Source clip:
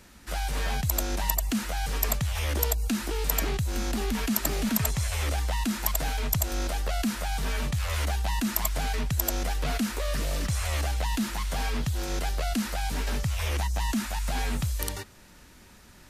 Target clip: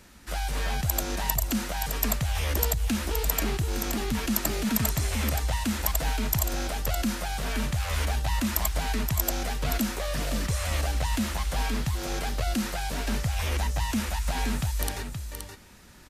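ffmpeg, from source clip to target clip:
-af "aecho=1:1:523:0.447"

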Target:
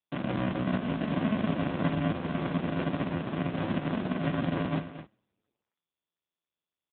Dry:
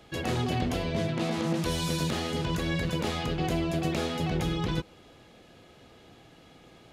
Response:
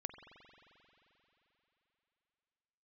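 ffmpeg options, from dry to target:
-filter_complex "[0:a]aemphasis=mode=reproduction:type=50kf,acrossover=split=2600[a][b];[a]alimiter=limit=-23dB:level=0:latency=1:release=66[c];[c][b]amix=inputs=2:normalize=0,acrusher=bits=6:mix=0:aa=0.000001,equalizer=f=1.9k:t=o:w=0.82:g=9,bandreject=f=750:w=13,bandreject=f=276.9:t=h:w=4,bandreject=f=553.8:t=h:w=4,bandreject=f=830.7:t=h:w=4,bandreject=f=1.1076k:t=h:w=4,bandreject=f=1.3845k:t=h:w=4,bandreject=f=1.6614k:t=h:w=4,bandreject=f=1.9383k:t=h:w=4,bandreject=f=2.2152k:t=h:w=4,bandreject=f=2.4921k:t=h:w=4,bandreject=f=2.769k:t=h:w=4,bandreject=f=3.0459k:t=h:w=4,bandreject=f=3.3228k:t=h:w=4,bandreject=f=3.5997k:t=h:w=4,bandreject=f=3.8766k:t=h:w=4,bandreject=f=4.1535k:t=h:w=4,bandreject=f=4.4304k:t=h:w=4,bandreject=f=4.7073k:t=h:w=4,bandreject=f=4.9842k:t=h:w=4,bandreject=f=5.2611k:t=h:w=4,bandreject=f=5.538k:t=h:w=4,bandreject=f=5.8149k:t=h:w=4,bandreject=f=6.0918k:t=h:w=4,bandreject=f=6.3687k:t=h:w=4,bandreject=f=6.6456k:t=h:w=4,bandreject=f=6.9225k:t=h:w=4,bandreject=f=7.1994k:t=h:w=4,bandreject=f=7.4763k:t=h:w=4,bandreject=f=7.7532k:t=h:w=4,bandreject=f=8.0301k:t=h:w=4,bandreject=f=8.307k:t=h:w=4,bandreject=f=8.5839k:t=h:w=4,bandreject=f=8.8608k:t=h:w=4,bandreject=f=9.1377k:t=h:w=4,bandreject=f=9.4146k:t=h:w=4,bandreject=f=9.6915k:t=h:w=4,bandreject=f=9.9684k:t=h:w=4,bandreject=f=10.2453k:t=h:w=4,bandreject=f=10.5222k:t=h:w=4,bandreject=f=10.7991k:t=h:w=4,bandreject=f=11.076k:t=h:w=4,acrossover=split=3100[d][e];[e]acompressor=threshold=-45dB:ratio=4:attack=1:release=60[f];[d][f]amix=inputs=2:normalize=0,aecho=1:1:229:0.224,aresample=16000,acrusher=samples=37:mix=1:aa=0.000001,aresample=44100,highpass=150,acompressor=mode=upward:threshold=-38dB:ratio=2.5,volume=7dB" -ar 8000 -c:a libopencore_amrnb -b:a 5150

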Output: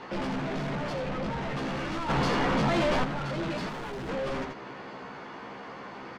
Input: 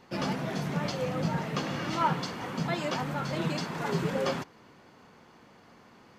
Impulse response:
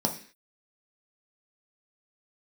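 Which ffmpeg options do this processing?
-filter_complex "[0:a]asettb=1/sr,asplit=3[a][b][c];[a]atrim=end=0.924[d];[b]atrim=start=0.92:end=1.41,asetpts=PTS-STARTPTS,afade=t=in:d=0.004:c=qsin,afade=t=out:st=0.486:d=0.004:c=qsin,lowpass=5k[e];[c]atrim=start=1.406[f];[d][e]acrossfade=d=0.004:c1=hsin:c2=qsin[g];[g][f]acrossfade=d=0.004:c1=qsin:c2=hsin,asplit=2[h][i];[i]highpass=f=720:p=1,volume=28dB,asoftclip=type=tanh:threshold=-14.5dB[j];[h][j]amix=inputs=2:normalize=0,lowpass=f=3.7k:p=1,volume=-6dB,aemphasis=mode=reproduction:type=bsi,asplit=2[k][l];[l]adelay=15,volume=-2.5dB[m];[k][m]amix=inputs=2:normalize=0,asplit=2[n][o];[o]aecho=0:1:84:0.398[p];[n][p]amix=inputs=2:normalize=0,asoftclip=type=tanh:threshold=-20dB,acrossover=split=460[q][r];[r]acompressor=threshold=-37dB:ratio=1.5[s];[q][s]amix=inputs=2:normalize=0,equalizer=f=84:w=0.65:g=-5.5,asplit=3[t][u][v];[t]afade=t=out:st=2.08:d=0.02[w];[u]acontrast=89,afade=t=in:st=2.08:d=0.02,afade=t=out:st=3.03:d=0.02[x];[v]afade=t=in:st=3.03:d=0.02[y];[w][x][y]amix=inputs=3:normalize=0,asettb=1/sr,asplit=3[z][aa][ab];[z]atrim=end=3.694[ac];[aa]atrim=start=3.69:end=4.09,asetpts=PTS-STARTPTS,afade=t=in:d=0.004:c=qsin,afade=t=out:st=0.396:d=0.004:c=qsin,asoftclip=type=hard:threshold=-29dB[ad];[ab]atrim=start=4.086[ae];[ac][ad]acrossfade=d=0.004:c1=hsin:c2=qsin[af];[af][ae]acrossfade=d=0.004:c1=qsin:c2=hsin,volume=-5.5dB"

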